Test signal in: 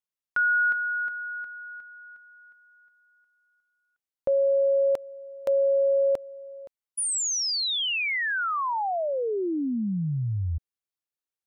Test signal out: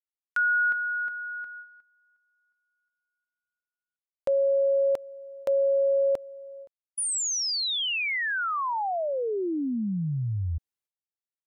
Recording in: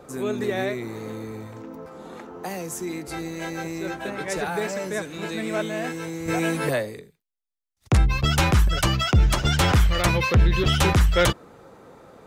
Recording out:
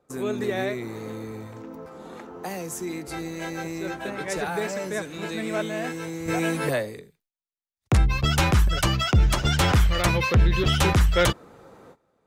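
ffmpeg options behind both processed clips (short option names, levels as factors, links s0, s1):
-af "agate=range=0.1:threshold=0.0126:ratio=16:release=437:detection=rms,volume=0.891"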